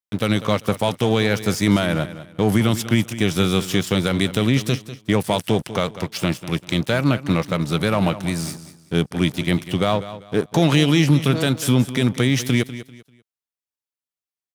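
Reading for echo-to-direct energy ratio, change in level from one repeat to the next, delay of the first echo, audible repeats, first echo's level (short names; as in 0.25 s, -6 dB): -13.5 dB, -11.0 dB, 0.196 s, 2, -14.0 dB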